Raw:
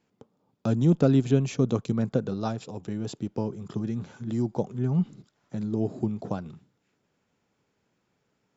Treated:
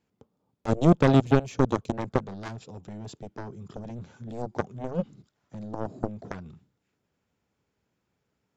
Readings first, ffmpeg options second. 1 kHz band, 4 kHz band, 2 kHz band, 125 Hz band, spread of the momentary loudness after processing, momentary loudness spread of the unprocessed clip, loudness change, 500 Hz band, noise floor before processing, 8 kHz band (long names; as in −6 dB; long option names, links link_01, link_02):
+6.5 dB, +1.5 dB, +7.5 dB, −2.0 dB, 21 LU, 13 LU, +1.5 dB, +1.0 dB, −75 dBFS, can't be measured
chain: -af "equalizer=frequency=63:width=1.2:gain=10,aeval=exprs='0.422*(cos(1*acos(clip(val(0)/0.422,-1,1)))-cos(1*PI/2))+0.0944*(cos(7*acos(clip(val(0)/0.422,-1,1)))-cos(7*PI/2))':channel_layout=same"